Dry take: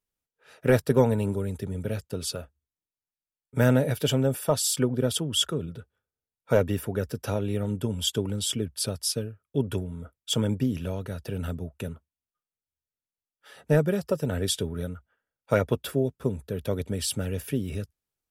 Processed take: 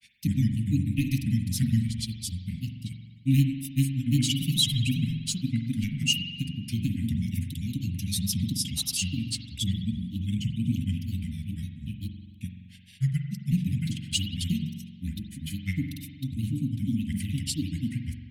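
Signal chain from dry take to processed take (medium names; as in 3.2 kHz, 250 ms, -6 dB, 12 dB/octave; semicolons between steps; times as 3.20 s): Chebyshev band-stop 250–2100 Hz, order 5; granulator 100 ms, grains 20 per s, spray 806 ms, pitch spread up and down by 3 st; spring tank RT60 1.4 s, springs 44 ms, chirp 50 ms, DRR 5 dB; trim +2.5 dB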